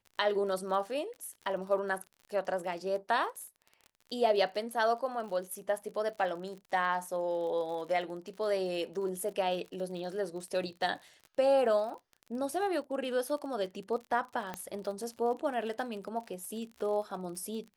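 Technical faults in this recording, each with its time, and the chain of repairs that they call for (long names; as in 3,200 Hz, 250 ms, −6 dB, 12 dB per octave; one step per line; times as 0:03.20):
surface crackle 45 per second −41 dBFS
0:14.54: click −22 dBFS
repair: click removal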